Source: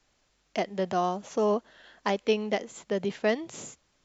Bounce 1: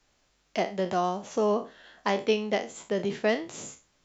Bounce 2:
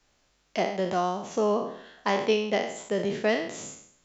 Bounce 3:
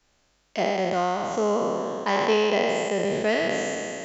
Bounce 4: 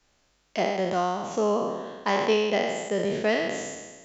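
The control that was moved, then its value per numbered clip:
spectral sustain, RT60: 0.3 s, 0.65 s, 2.99 s, 1.39 s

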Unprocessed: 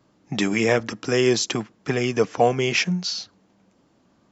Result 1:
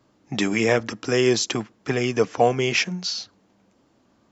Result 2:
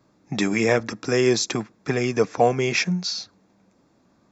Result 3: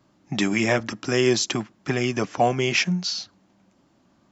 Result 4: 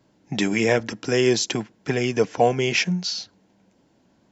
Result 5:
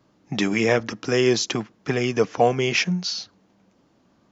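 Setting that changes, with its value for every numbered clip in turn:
band-stop, frequency: 170 Hz, 3 kHz, 460 Hz, 1.2 kHz, 7.7 kHz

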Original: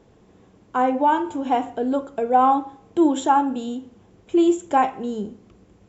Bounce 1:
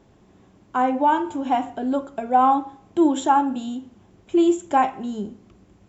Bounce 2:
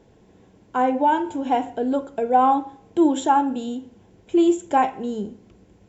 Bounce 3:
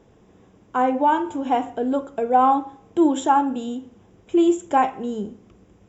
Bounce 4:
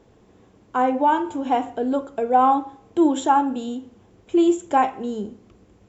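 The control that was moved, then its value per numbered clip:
band-stop, frequency: 470 Hz, 1.2 kHz, 4.3 kHz, 170 Hz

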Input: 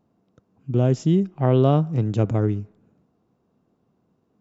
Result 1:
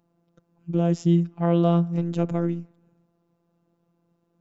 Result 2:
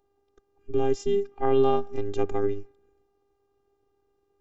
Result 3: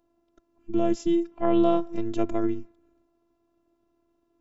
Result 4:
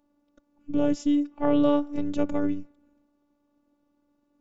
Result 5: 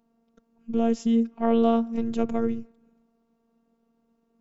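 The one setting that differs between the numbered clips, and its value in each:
robot voice, frequency: 170 Hz, 400 Hz, 340 Hz, 290 Hz, 230 Hz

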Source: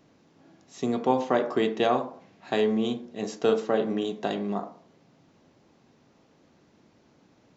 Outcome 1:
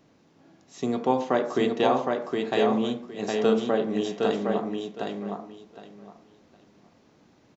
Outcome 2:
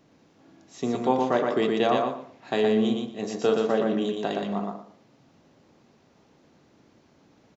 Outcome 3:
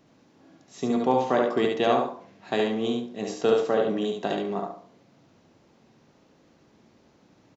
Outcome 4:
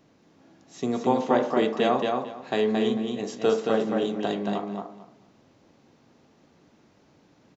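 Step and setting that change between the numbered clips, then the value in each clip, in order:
feedback delay, time: 763 ms, 119 ms, 71 ms, 224 ms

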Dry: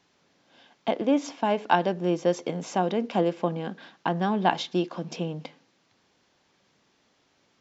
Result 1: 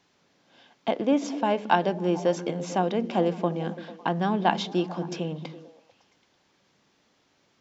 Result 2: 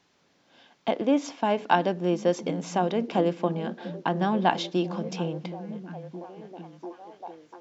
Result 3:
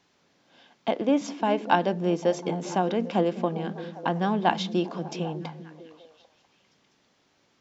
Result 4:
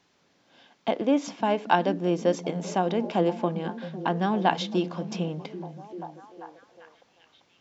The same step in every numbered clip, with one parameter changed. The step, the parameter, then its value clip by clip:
repeats whose band climbs or falls, time: 111 ms, 694 ms, 199 ms, 392 ms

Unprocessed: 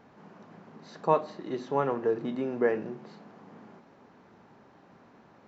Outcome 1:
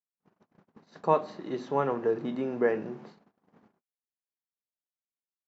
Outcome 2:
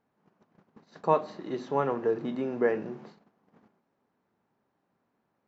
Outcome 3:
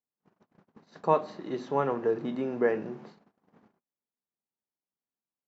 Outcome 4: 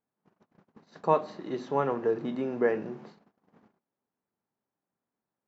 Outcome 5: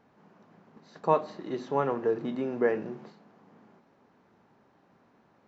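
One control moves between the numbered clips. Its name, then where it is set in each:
gate, range: -58 dB, -20 dB, -46 dB, -33 dB, -7 dB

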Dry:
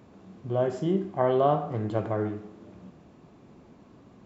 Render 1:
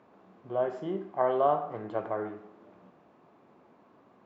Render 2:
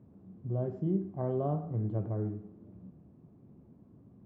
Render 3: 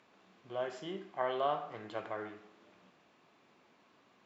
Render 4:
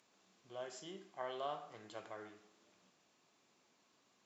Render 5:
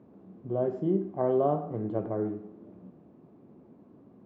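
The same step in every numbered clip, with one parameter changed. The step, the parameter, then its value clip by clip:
band-pass filter, frequency: 1 kHz, 110 Hz, 2.7 kHz, 7.3 kHz, 300 Hz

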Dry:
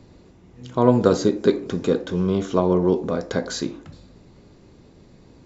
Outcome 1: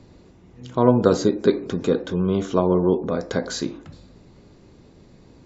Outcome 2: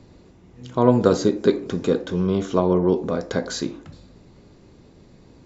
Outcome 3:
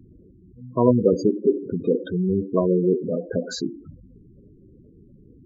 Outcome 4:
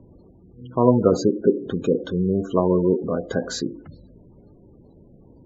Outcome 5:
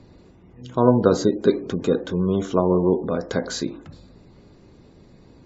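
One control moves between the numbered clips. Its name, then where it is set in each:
spectral gate, under each frame's peak: -45 dB, -60 dB, -10 dB, -20 dB, -35 dB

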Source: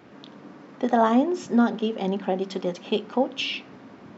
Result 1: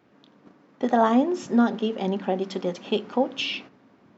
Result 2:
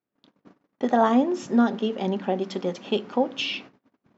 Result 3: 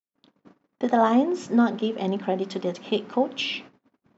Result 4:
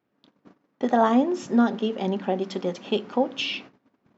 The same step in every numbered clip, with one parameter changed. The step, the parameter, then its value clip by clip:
gate, range: -11 dB, -38 dB, -58 dB, -26 dB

